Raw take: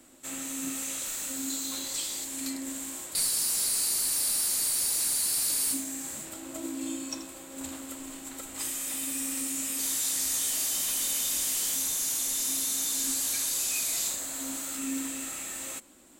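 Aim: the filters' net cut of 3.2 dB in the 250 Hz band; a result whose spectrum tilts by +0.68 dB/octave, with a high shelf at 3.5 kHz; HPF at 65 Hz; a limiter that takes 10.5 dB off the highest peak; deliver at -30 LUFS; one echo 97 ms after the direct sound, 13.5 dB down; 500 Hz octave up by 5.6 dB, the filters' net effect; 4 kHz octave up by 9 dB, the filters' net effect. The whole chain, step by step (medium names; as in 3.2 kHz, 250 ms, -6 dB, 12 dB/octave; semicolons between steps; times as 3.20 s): high-pass 65 Hz; peaking EQ 250 Hz -6 dB; peaking EQ 500 Hz +8.5 dB; treble shelf 3.5 kHz +4.5 dB; peaking EQ 4 kHz +7.5 dB; peak limiter -20.5 dBFS; delay 97 ms -13.5 dB; trim -3 dB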